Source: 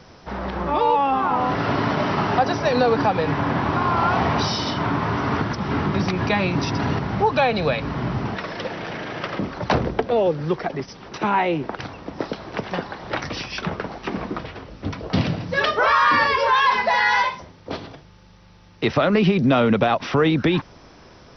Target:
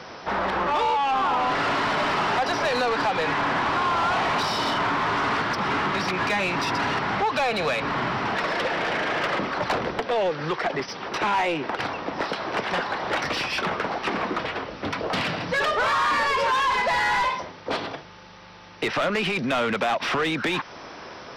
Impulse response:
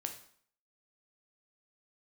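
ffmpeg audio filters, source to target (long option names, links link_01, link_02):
-filter_complex "[0:a]acrossover=split=960|2400[link_01][link_02][link_03];[link_01]acompressor=threshold=-28dB:ratio=4[link_04];[link_02]acompressor=threshold=-32dB:ratio=4[link_05];[link_03]acompressor=threshold=-34dB:ratio=4[link_06];[link_04][link_05][link_06]amix=inputs=3:normalize=0,asplit=2[link_07][link_08];[link_08]highpass=frequency=720:poles=1,volume=24dB,asoftclip=type=tanh:threshold=-8dB[link_09];[link_07][link_09]amix=inputs=2:normalize=0,lowpass=frequency=2800:poles=1,volume=-6dB,volume=-6dB"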